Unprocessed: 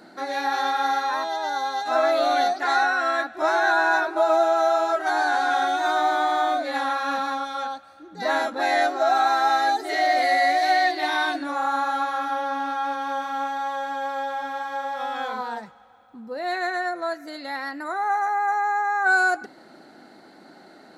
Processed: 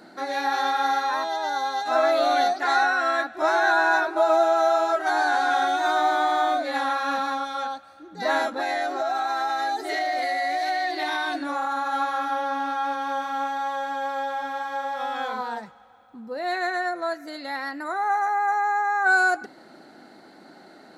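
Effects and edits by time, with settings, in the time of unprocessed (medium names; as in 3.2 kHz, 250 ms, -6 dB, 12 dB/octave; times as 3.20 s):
8.53–11.93 s: compression, threshold -22 dBFS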